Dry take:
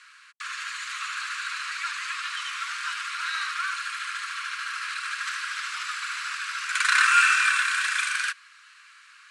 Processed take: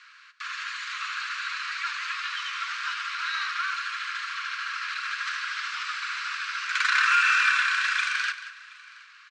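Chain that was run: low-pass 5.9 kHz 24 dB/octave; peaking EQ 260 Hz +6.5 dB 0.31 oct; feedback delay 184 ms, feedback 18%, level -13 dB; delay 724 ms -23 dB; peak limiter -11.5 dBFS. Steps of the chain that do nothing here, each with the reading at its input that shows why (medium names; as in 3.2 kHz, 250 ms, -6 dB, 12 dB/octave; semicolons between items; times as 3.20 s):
peaking EQ 260 Hz: input has nothing below 910 Hz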